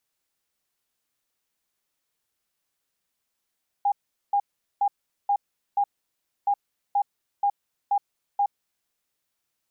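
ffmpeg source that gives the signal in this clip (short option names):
-f lavfi -i "aevalsrc='0.119*sin(2*PI*809*t)*clip(min(mod(mod(t,2.62),0.48),0.07-mod(mod(t,2.62),0.48))/0.005,0,1)*lt(mod(t,2.62),2.4)':d=5.24:s=44100"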